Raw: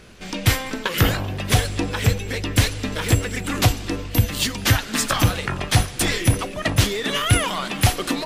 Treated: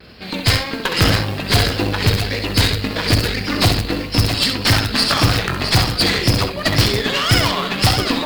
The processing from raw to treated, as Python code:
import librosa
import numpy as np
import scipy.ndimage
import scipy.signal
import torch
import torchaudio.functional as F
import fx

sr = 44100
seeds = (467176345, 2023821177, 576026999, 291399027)

p1 = fx.freq_compress(x, sr, knee_hz=3900.0, ratio=4.0)
p2 = scipy.signal.sosfilt(scipy.signal.butter(4, 46.0, 'highpass', fs=sr, output='sos'), p1)
p3 = (np.mod(10.0 ** (9.0 / 20.0) * p2 + 1.0, 2.0) - 1.0) / 10.0 ** (9.0 / 20.0)
p4 = p2 + (p3 * librosa.db_to_amplitude(-7.0))
p5 = fx.mod_noise(p4, sr, seeds[0], snr_db=23)
p6 = fx.vibrato(p5, sr, rate_hz=1.8, depth_cents=71.0)
p7 = p6 + fx.echo_multitap(p6, sr, ms=(66, 661), db=(-6.5, -8.0), dry=0)
y = fx.cheby_harmonics(p7, sr, harmonics=(6,), levels_db=(-19,), full_scale_db=-2.0)